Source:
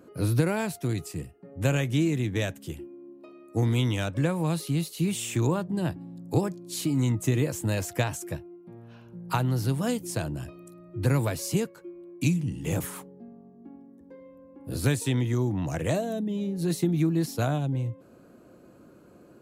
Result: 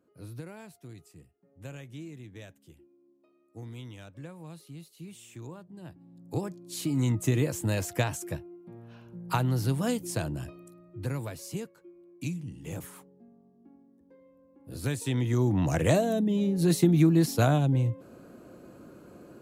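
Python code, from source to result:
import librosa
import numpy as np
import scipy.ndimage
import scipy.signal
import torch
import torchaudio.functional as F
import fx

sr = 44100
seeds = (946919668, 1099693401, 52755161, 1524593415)

y = fx.gain(x, sr, db=fx.line((5.79, -18.0), (6.27, -8.0), (7.11, -1.0), (10.48, -1.0), (11.14, -9.5), (14.66, -9.5), (15.59, 3.5)))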